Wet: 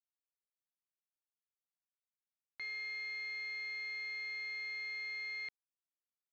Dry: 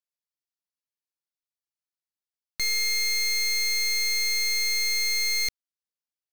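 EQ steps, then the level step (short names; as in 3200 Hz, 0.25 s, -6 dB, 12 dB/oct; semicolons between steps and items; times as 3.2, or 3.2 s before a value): band-pass 3400 Hz, Q 0.64; air absorption 410 m; high shelf 3000 Hz -11.5 dB; -1.5 dB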